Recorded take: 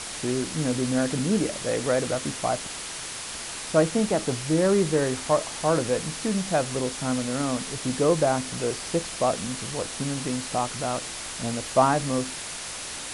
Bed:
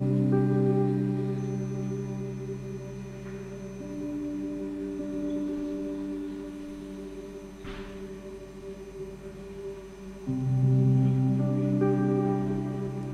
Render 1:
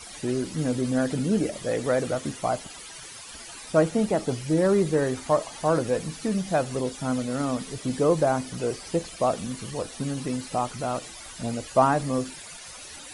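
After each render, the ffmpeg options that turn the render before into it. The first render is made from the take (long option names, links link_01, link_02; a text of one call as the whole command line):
ffmpeg -i in.wav -af "afftdn=noise_reduction=14:noise_floor=-36" out.wav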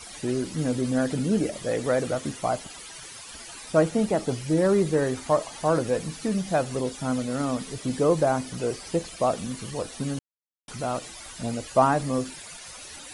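ffmpeg -i in.wav -filter_complex "[0:a]asplit=3[link_01][link_02][link_03];[link_01]atrim=end=10.19,asetpts=PTS-STARTPTS,afade=type=out:start_time=10.186:duration=0.004:curve=hsin[link_04];[link_02]atrim=start=10.19:end=10.68,asetpts=PTS-STARTPTS,volume=0[link_05];[link_03]atrim=start=10.68,asetpts=PTS-STARTPTS,afade=type=in:duration=0.004:curve=hsin[link_06];[link_04][link_05][link_06]concat=n=3:v=0:a=1" out.wav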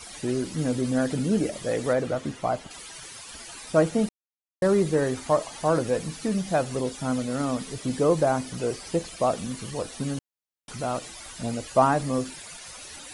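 ffmpeg -i in.wav -filter_complex "[0:a]asettb=1/sr,asplit=3[link_01][link_02][link_03];[link_01]atrim=end=1.934[link_04];[link_02]atrim=start=1.93:end=2.71,asetpts=PTS-STARTPTS,afade=type=in:duration=0.004:curve=qsin,afade=type=out:start_time=0.776:duration=0.004:curve=qsin,lowpass=frequency=3100:poles=1[link_05];[link_03]atrim=start=2.706[link_06];[link_04][link_05]acrossfade=duration=0.004:curve1=hsin:curve2=qsin[link_07];[link_07][link_06]acrossfade=duration=0.004:curve1=qsin:curve2=hsin,asplit=3[link_08][link_09][link_10];[link_08]atrim=end=4.09,asetpts=PTS-STARTPTS,afade=type=out:start_time=4.086:duration=0.004:curve=hsin[link_11];[link_09]atrim=start=4.09:end=4.62,asetpts=PTS-STARTPTS,volume=0[link_12];[link_10]atrim=start=4.62,asetpts=PTS-STARTPTS,afade=type=in:duration=0.004:curve=hsin[link_13];[link_11][link_12][link_13]concat=n=3:v=0:a=1" out.wav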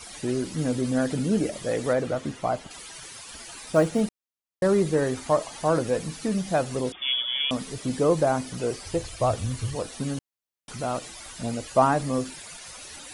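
ffmpeg -i in.wav -filter_complex "[0:a]asettb=1/sr,asplit=3[link_01][link_02][link_03];[link_01]atrim=end=3.324[link_04];[link_02]atrim=start=3.32:end=4.01,asetpts=PTS-STARTPTS,afade=type=in:duration=0.004:curve=qsin,afade=type=out:start_time=0.686:duration=0.004:curve=qsin,acrusher=bits=9:mode=log:mix=0:aa=0.000001[link_05];[link_03]atrim=start=4.006[link_06];[link_04][link_05]acrossfade=duration=0.004:curve1=hsin:curve2=qsin[link_07];[link_07][link_06]acrossfade=duration=0.004:curve1=qsin:curve2=hsin,asettb=1/sr,asplit=3[link_08][link_09][link_10];[link_08]atrim=end=6.924[link_11];[link_09]atrim=start=6.92:end=7.51,asetpts=PTS-STARTPTS,afade=type=in:duration=0.004:curve=qsin,afade=type=out:start_time=0.586:duration=0.004:curve=qsin,lowpass=frequency=3100:width_type=q:width=0.5098,lowpass=frequency=3100:width_type=q:width=0.6013,lowpass=frequency=3100:width_type=q:width=0.9,lowpass=frequency=3100:width_type=q:width=2.563,afreqshift=-3600[link_12];[link_10]atrim=start=7.506[link_13];[link_11][link_12]acrossfade=duration=0.004:curve1=hsin:curve2=qsin[link_14];[link_14][link_13]acrossfade=duration=0.004:curve1=qsin:curve2=hsin,asettb=1/sr,asplit=3[link_15][link_16][link_17];[link_15]atrim=end=8.854[link_18];[link_16]atrim=start=8.85:end=9.76,asetpts=PTS-STARTPTS,afade=type=in:duration=0.004:curve=qsin,afade=type=out:start_time=0.906:duration=0.004:curve=qsin,lowshelf=frequency=140:width_type=q:width=3:gain=8.5[link_19];[link_17]atrim=start=9.756[link_20];[link_18][link_19]acrossfade=duration=0.004:curve1=hsin:curve2=qsin[link_21];[link_21][link_20]acrossfade=duration=0.004:curve1=qsin:curve2=hsin" out.wav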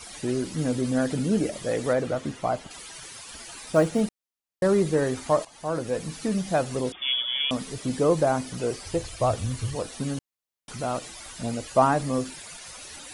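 ffmpeg -i in.wav -filter_complex "[0:a]asplit=2[link_01][link_02];[link_01]atrim=end=5.45,asetpts=PTS-STARTPTS,afade=type=out:start_time=5.446:duration=0.004:curve=hsin:silence=0.223872[link_03];[link_02]atrim=start=5.45,asetpts=PTS-STARTPTS,afade=type=in:duration=0.73:silence=0.223872[link_04];[link_03][link_04]concat=n=2:v=0:a=1" out.wav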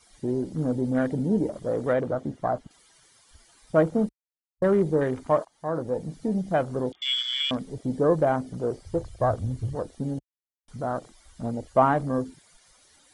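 ffmpeg -i in.wav -af "afwtdn=0.0178,bandreject=frequency=2600:width=7.5" out.wav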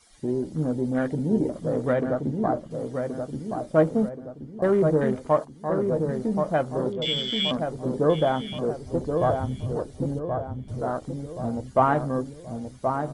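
ffmpeg -i in.wav -filter_complex "[0:a]asplit=2[link_01][link_02];[link_02]adelay=13,volume=-12.5dB[link_03];[link_01][link_03]amix=inputs=2:normalize=0,asplit=2[link_04][link_05];[link_05]adelay=1076,lowpass=frequency=1200:poles=1,volume=-4.5dB,asplit=2[link_06][link_07];[link_07]adelay=1076,lowpass=frequency=1200:poles=1,volume=0.48,asplit=2[link_08][link_09];[link_09]adelay=1076,lowpass=frequency=1200:poles=1,volume=0.48,asplit=2[link_10][link_11];[link_11]adelay=1076,lowpass=frequency=1200:poles=1,volume=0.48,asplit=2[link_12][link_13];[link_13]adelay=1076,lowpass=frequency=1200:poles=1,volume=0.48,asplit=2[link_14][link_15];[link_15]adelay=1076,lowpass=frequency=1200:poles=1,volume=0.48[link_16];[link_06][link_08][link_10][link_12][link_14][link_16]amix=inputs=6:normalize=0[link_17];[link_04][link_17]amix=inputs=2:normalize=0" out.wav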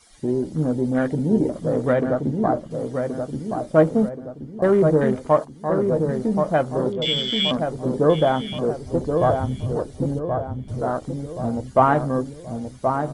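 ffmpeg -i in.wav -af "volume=4dB" out.wav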